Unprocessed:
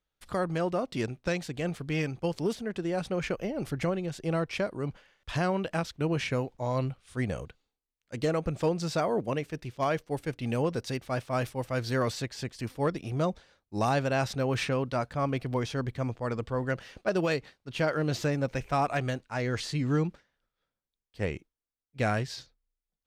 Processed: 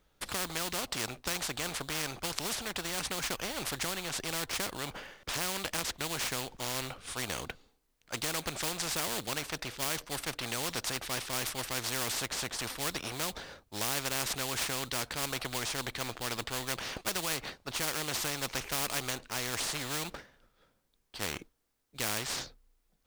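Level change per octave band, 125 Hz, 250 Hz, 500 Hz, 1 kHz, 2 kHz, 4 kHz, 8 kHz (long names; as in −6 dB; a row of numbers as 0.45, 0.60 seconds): −12.5, −11.0, −11.0, −5.0, 0.0, +7.0, +12.5 decibels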